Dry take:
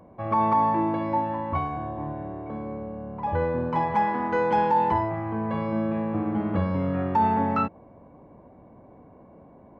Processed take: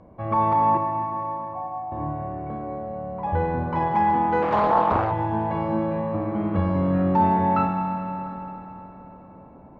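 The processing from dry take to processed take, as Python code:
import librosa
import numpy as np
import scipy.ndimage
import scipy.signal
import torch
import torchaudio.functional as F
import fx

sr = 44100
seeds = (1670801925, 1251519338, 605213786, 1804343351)

y = fx.low_shelf(x, sr, hz=77.0, db=9.0)
y = fx.formant_cascade(y, sr, vowel='a', at=(0.77, 1.92))
y = fx.air_absorb(y, sr, metres=84.0)
y = y + 10.0 ** (-21.0 / 20.0) * np.pad(y, (int(696 * sr / 1000.0), 0))[:len(y)]
y = fx.rev_schroeder(y, sr, rt60_s=3.6, comb_ms=27, drr_db=3.5)
y = fx.doppler_dist(y, sr, depth_ms=0.83, at=(4.42, 5.12))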